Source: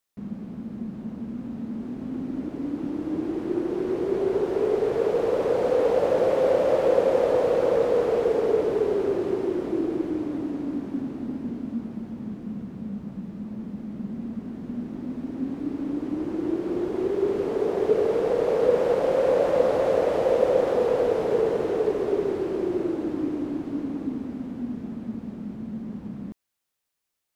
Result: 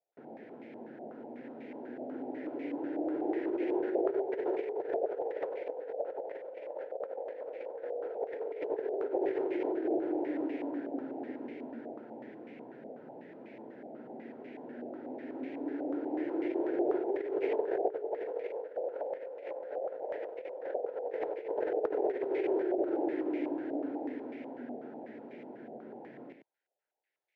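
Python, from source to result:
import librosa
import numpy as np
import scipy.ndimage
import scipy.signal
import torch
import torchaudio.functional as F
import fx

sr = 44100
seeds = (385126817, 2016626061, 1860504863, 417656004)

y = scipy.signal.sosfilt(scipy.signal.butter(4, 160.0, 'highpass', fs=sr, output='sos'), x)
y = fx.low_shelf(y, sr, hz=280.0, db=-11.0)
y = fx.over_compress(y, sr, threshold_db=-31.0, ratio=-0.5)
y = fx.fixed_phaser(y, sr, hz=480.0, stages=4)
y = y + 10.0 ** (-7.5 / 20.0) * np.pad(y, (int(95 * sr / 1000.0), 0))[:len(y)]
y = fx.filter_held_lowpass(y, sr, hz=8.1, low_hz=710.0, high_hz=2200.0)
y = y * 10.0 ** (-3.0 / 20.0)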